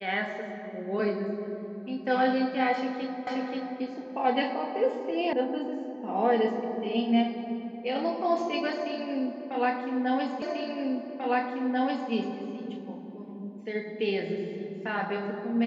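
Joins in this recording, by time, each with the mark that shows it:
3.27 s: repeat of the last 0.53 s
5.33 s: sound stops dead
10.42 s: repeat of the last 1.69 s

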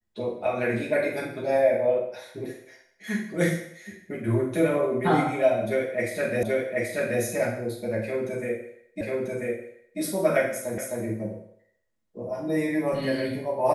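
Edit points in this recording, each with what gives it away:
6.43 s: repeat of the last 0.78 s
9.01 s: repeat of the last 0.99 s
10.78 s: repeat of the last 0.26 s

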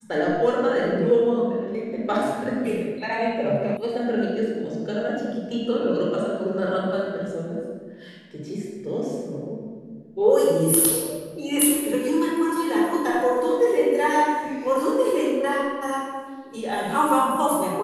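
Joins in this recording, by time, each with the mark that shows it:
3.77 s: sound stops dead

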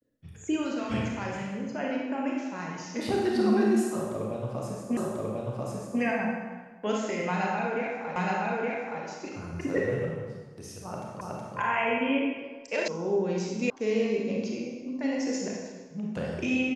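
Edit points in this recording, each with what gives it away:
4.97 s: repeat of the last 1.04 s
8.16 s: repeat of the last 0.87 s
11.21 s: repeat of the last 0.37 s
12.88 s: sound stops dead
13.70 s: sound stops dead

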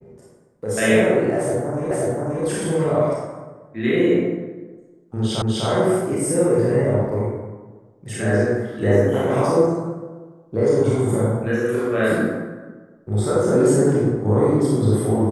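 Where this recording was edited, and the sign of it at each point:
1.91 s: repeat of the last 0.53 s
5.42 s: repeat of the last 0.25 s

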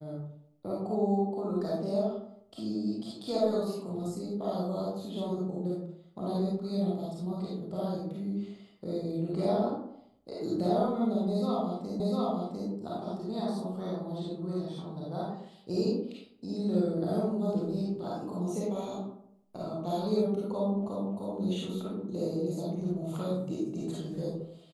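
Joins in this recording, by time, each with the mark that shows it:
12.00 s: repeat of the last 0.7 s

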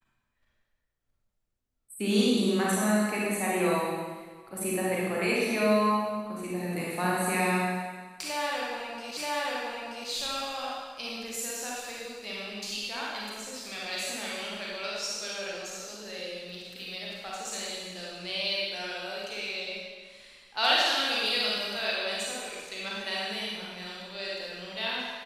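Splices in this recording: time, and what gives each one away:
9.17 s: repeat of the last 0.93 s

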